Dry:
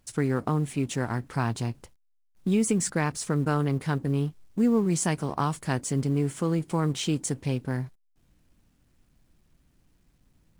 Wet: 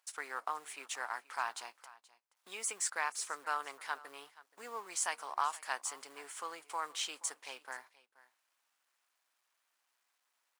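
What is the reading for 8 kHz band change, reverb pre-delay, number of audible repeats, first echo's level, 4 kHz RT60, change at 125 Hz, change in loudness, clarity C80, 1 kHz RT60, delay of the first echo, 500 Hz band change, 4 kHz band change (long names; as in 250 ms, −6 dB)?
−5.0 dB, no reverb audible, 1, −20.0 dB, no reverb audible, below −40 dB, −11.5 dB, no reverb audible, no reverb audible, 477 ms, −19.0 dB, −4.5 dB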